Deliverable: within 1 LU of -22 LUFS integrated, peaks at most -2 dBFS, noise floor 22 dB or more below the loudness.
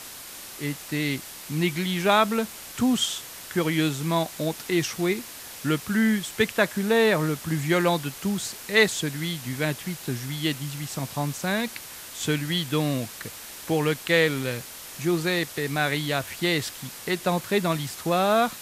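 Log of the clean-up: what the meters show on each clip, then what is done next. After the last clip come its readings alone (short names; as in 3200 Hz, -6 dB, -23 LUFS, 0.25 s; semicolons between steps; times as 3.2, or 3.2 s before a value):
noise floor -41 dBFS; noise floor target -48 dBFS; loudness -25.5 LUFS; peak -6.0 dBFS; loudness target -22.0 LUFS
-> denoiser 7 dB, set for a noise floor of -41 dBFS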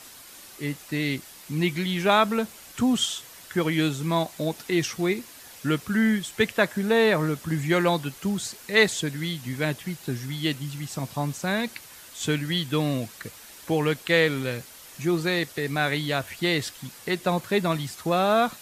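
noise floor -46 dBFS; noise floor target -48 dBFS
-> denoiser 6 dB, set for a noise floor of -46 dBFS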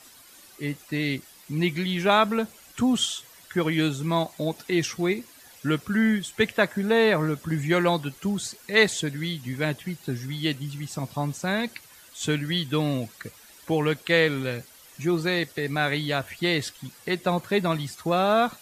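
noise floor -51 dBFS; loudness -25.5 LUFS; peak -6.0 dBFS; loudness target -22.0 LUFS
-> gain +3.5 dB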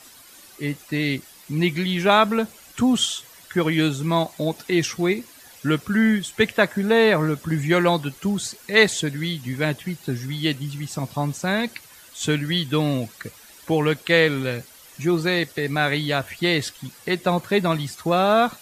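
loudness -22.0 LUFS; peak -2.5 dBFS; noise floor -48 dBFS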